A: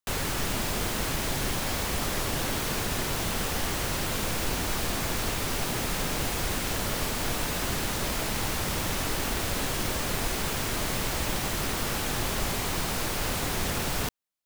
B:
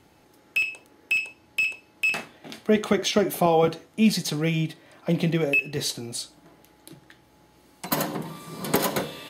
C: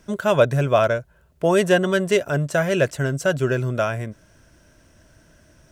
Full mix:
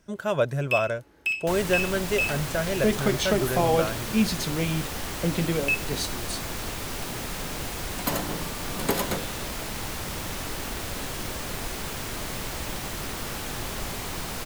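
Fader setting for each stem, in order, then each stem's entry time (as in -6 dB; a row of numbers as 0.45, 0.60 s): -3.5, -3.0, -7.5 dB; 1.40, 0.15, 0.00 s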